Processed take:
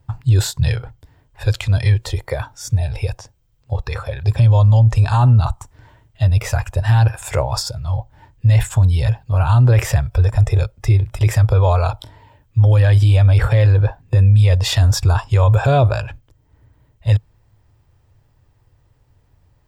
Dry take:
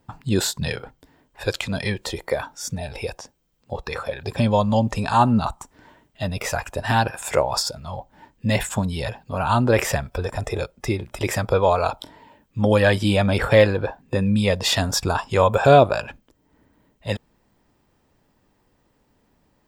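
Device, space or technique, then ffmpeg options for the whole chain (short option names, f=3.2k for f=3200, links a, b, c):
car stereo with a boomy subwoofer: -af "lowshelf=f=150:t=q:w=3:g=10.5,alimiter=limit=-6dB:level=0:latency=1:release=13"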